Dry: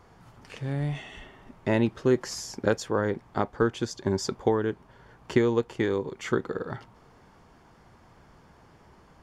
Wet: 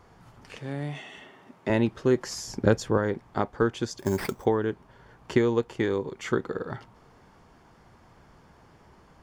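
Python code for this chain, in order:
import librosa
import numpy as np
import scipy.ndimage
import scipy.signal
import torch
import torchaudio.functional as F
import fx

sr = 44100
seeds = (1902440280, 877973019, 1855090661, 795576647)

y = fx.highpass(x, sr, hz=180.0, slope=12, at=(0.59, 1.7))
y = fx.low_shelf(y, sr, hz=250.0, db=10.0, at=(2.47, 2.98))
y = fx.sample_hold(y, sr, seeds[0], rate_hz=6900.0, jitter_pct=0, at=(3.98, 4.44), fade=0.02)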